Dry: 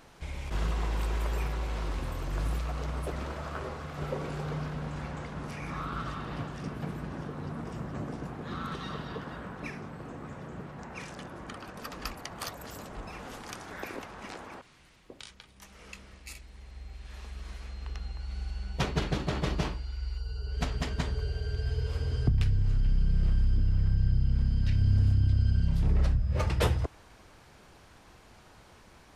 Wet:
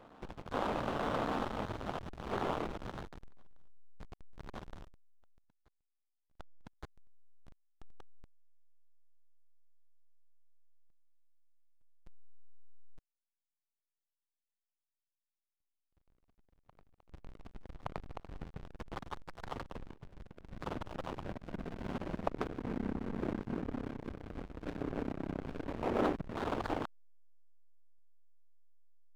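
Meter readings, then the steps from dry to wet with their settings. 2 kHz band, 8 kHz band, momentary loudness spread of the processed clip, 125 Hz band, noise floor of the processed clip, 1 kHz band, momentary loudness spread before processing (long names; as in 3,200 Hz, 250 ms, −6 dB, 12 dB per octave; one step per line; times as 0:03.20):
−7.0 dB, −16.0 dB, 20 LU, −18.5 dB, below −85 dBFS, −2.0 dB, 16 LU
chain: gate on every frequency bin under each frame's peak −25 dB weak
low-pass filter 1,300 Hz 24 dB per octave
mains-hum notches 50/100 Hz
in parallel at +3 dB: downward compressor 12 to 1, threshold −60 dBFS, peak gain reduction 19 dB
on the sum: spring reverb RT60 1.9 s, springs 45 ms, chirp 65 ms, DRR 12 dB
slack as between gear wheels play −40 dBFS
backwards echo 1,169 ms −23 dB
level +15 dB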